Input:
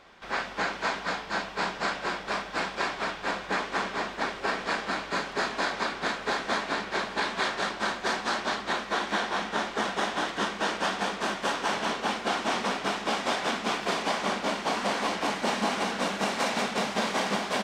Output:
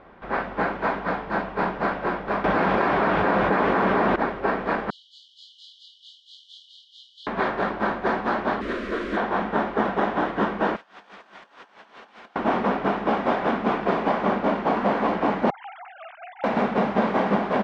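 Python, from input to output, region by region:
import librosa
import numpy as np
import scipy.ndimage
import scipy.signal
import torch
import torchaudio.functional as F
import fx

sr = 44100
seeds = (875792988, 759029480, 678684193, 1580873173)

y = fx.chain(x, sr, fx.highpass(hz=69.0, slope=12),
    fx.env_flatten(amount_pct=100), at=(2.44, 4.16))
y = fx.chain(y, sr, fx.brickwall_highpass(low_hz=2900.0),
    fx.doubler(ms=22.0, db=-2.5), at=(4.9, 7.27))
y = fx.chain(y, sr, fx.delta_mod(bps=64000, step_db=-25.5),
    fx.fixed_phaser(hz=340.0, stages=4), at=(8.61, 9.17))
y = fx.chain(y, sr, fx.pre_emphasis(coefficient=0.97),
    fx.over_compress(threshold_db=-47.0, ratio=-0.5), at=(10.76, 12.36))
y = fx.chain(y, sr, fx.sine_speech(),
    fx.differentiator(), at=(15.5, 16.44))
y = scipy.signal.sosfilt(scipy.signal.butter(2, 1800.0, 'lowpass', fs=sr, output='sos'), y)
y = fx.tilt_shelf(y, sr, db=4.0, hz=900.0)
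y = F.gain(torch.from_numpy(y), 6.0).numpy()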